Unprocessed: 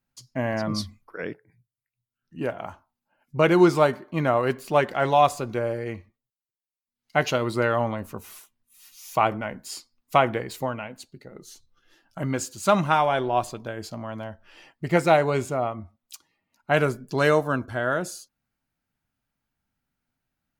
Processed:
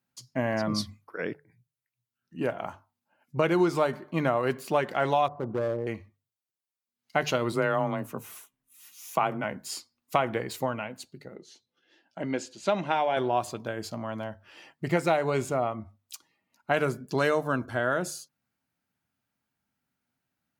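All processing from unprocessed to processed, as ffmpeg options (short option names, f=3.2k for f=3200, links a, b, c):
-filter_complex "[0:a]asettb=1/sr,asplit=3[a][b][c];[a]atrim=end=5.284[d];[b]atrim=start=5.28:end=5.87,asetpts=PTS-STARTPTS,afade=t=in:d=0.004:c=qsin,afade=t=out:st=0.586:d=0.004:c=qsin,lowpass=f=1.1k:w=0.5412,lowpass=f=1.1k:w=1.3066,volume=24dB,asoftclip=hard,volume=-24dB[e];[c]atrim=start=5.866[f];[d][e]acrossfade=d=0.004:c1=hsin:c2=qsin[g];[g][f]acrossfade=d=0.004:c1=qsin:c2=hsin,asettb=1/sr,asplit=3[h][i][j];[h]atrim=end=7.524[k];[i]atrim=start=7.52:end=9.44,asetpts=PTS-STARTPTS,afade=t=in:d=0.004:c=qsin,afade=t=out:st=1.916:d=0.004:c=qsin,afreqshift=21,deesser=0.65,equalizer=f=4.6k:t=o:w=0.55:g=-5.5[l];[j]atrim=start=9.436[m];[k][l]acrossfade=d=0.004:c1=hsin:c2=qsin[n];[n][m]acrossfade=d=0.004:c1=qsin:c2=hsin,asettb=1/sr,asplit=3[o][p][q];[o]atrim=end=11.354[r];[p]atrim=start=11.35:end=13.17,asetpts=PTS-STARTPTS,afade=t=in:d=0.004:c=qsin,afade=t=out:st=1.816:d=0.004:c=qsin,highpass=240,lowpass=4.1k,equalizer=f=1.2k:t=o:w=0.49:g=-11.5[s];[q]atrim=start=13.166[t];[r][s]acrossfade=d=0.004:c1=hsin:c2=qsin[u];[u][t]acrossfade=d=0.004:c1=qsin:c2=hsin,highpass=96,bandreject=f=50:t=h:w=6,bandreject=f=100:t=h:w=6,bandreject=f=150:t=h:w=6,acompressor=threshold=-22dB:ratio=3"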